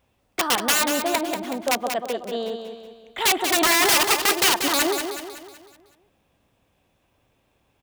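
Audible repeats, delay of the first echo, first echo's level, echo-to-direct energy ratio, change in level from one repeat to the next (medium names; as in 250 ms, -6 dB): 5, 187 ms, -7.0 dB, -6.0 dB, -6.5 dB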